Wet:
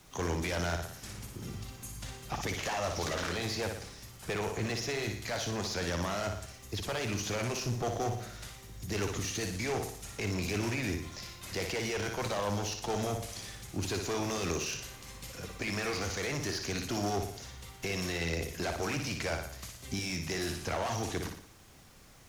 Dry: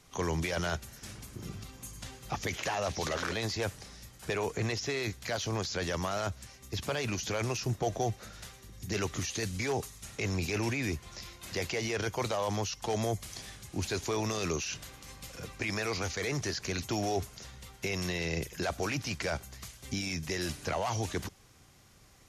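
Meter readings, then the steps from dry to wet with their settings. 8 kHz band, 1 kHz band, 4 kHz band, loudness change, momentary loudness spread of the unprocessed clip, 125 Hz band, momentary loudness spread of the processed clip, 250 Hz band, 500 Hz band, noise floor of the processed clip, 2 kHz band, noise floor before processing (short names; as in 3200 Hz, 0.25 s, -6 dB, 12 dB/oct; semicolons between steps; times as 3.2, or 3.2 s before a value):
0.0 dB, -0.5 dB, 0.0 dB, -1.0 dB, 12 LU, -1.0 dB, 10 LU, 0.0 dB, -1.0 dB, -52 dBFS, -0.5 dB, -57 dBFS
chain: flutter echo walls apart 10.1 m, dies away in 0.55 s; one-sided clip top -34 dBFS; added noise pink -61 dBFS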